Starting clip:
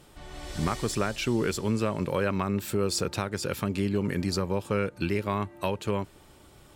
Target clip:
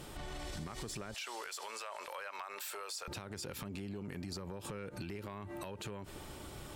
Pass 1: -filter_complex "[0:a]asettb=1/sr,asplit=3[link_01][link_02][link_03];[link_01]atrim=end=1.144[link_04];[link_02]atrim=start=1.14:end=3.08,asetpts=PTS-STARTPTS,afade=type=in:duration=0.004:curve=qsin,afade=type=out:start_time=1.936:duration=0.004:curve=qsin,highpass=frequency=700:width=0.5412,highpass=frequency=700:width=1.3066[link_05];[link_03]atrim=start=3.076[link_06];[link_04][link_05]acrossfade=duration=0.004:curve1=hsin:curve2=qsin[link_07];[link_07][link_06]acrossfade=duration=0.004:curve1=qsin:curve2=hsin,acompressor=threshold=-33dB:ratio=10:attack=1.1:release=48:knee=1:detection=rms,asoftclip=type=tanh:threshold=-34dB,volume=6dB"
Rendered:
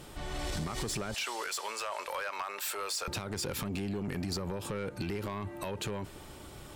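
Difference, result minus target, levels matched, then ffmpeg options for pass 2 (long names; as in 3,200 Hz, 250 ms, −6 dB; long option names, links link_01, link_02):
downward compressor: peak gain reduction −10 dB
-filter_complex "[0:a]asettb=1/sr,asplit=3[link_01][link_02][link_03];[link_01]atrim=end=1.144[link_04];[link_02]atrim=start=1.14:end=3.08,asetpts=PTS-STARTPTS,afade=type=in:duration=0.004:curve=qsin,afade=type=out:start_time=1.936:duration=0.004:curve=qsin,highpass=frequency=700:width=0.5412,highpass=frequency=700:width=1.3066[link_05];[link_03]atrim=start=3.076[link_06];[link_04][link_05]acrossfade=duration=0.004:curve1=hsin:curve2=qsin[link_07];[link_07][link_06]acrossfade=duration=0.004:curve1=qsin:curve2=hsin,acompressor=threshold=-44dB:ratio=10:attack=1.1:release=48:knee=1:detection=rms,asoftclip=type=tanh:threshold=-34dB,volume=6dB"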